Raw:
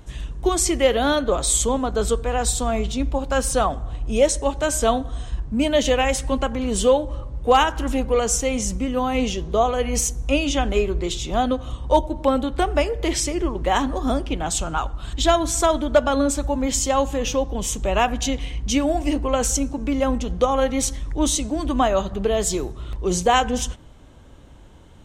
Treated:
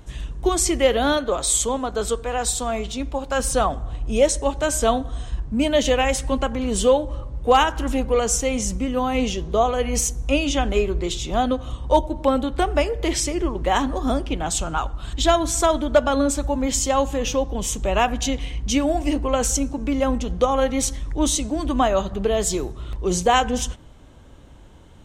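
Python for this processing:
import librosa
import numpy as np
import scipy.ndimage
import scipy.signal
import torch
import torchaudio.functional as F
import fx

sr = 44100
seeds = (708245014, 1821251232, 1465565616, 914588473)

y = fx.low_shelf(x, sr, hz=290.0, db=-7.0, at=(1.17, 3.4))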